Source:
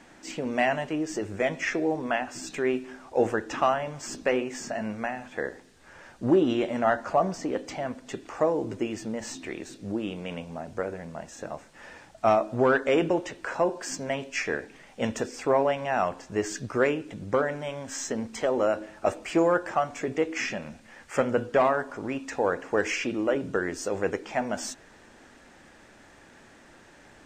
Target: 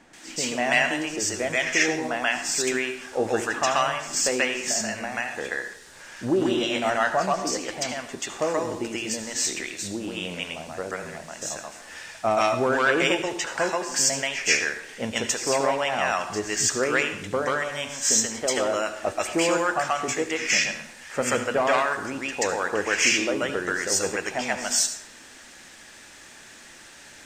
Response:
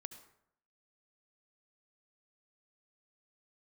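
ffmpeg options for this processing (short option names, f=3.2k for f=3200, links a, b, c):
-filter_complex "[0:a]asplit=2[a][b];[b]tiltshelf=f=880:g=-7.5[c];[1:a]atrim=start_sample=2205,highshelf=f=2.4k:g=10.5,adelay=133[d];[c][d]afir=irnorm=-1:irlink=0,volume=5dB[e];[a][e]amix=inputs=2:normalize=0,volume=-2dB"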